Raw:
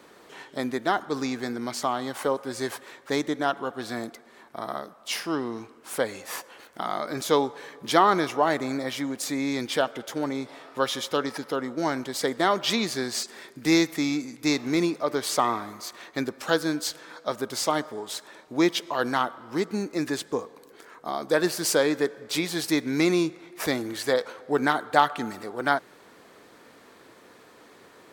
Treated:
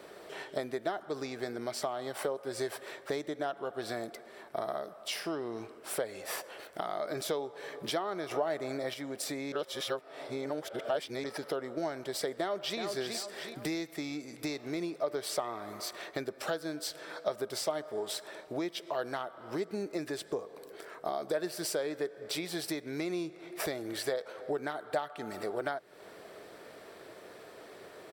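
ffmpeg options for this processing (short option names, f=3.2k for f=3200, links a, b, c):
-filter_complex "[0:a]asplit=2[a][b];[b]afade=t=in:st=12.36:d=0.01,afade=t=out:st=12.8:d=0.01,aecho=0:1:370|740|1110:0.375837|0.0939594|0.0234898[c];[a][c]amix=inputs=2:normalize=0,asplit=5[d][e][f][g][h];[d]atrim=end=8.312[i];[e]atrim=start=8.308:end=8.942,asetpts=PTS-STARTPTS,volume=7.5dB[j];[f]atrim=start=8.938:end=9.522[k];[g]atrim=start=9.518:end=11.242,asetpts=PTS-STARTPTS,areverse[l];[h]atrim=start=11.238[m];[i][j]acrossfade=d=0.004:c1=hsin:c2=hsin[n];[n][k]acrossfade=d=0.004:c1=hsin:c2=hsin[o];[o][l]acrossfade=d=0.004:c1=hsin:c2=hsin[p];[p][m]acrossfade=d=0.004:c1=hsin:c2=hsin,bandreject=f=6.6k:w=8.6,acompressor=threshold=-34dB:ratio=6,equalizer=f=250:t=o:w=0.33:g=-7,equalizer=f=400:t=o:w=0.33:g=5,equalizer=f=630:t=o:w=0.33:g=9,equalizer=f=1k:t=o:w=0.33:g=-4"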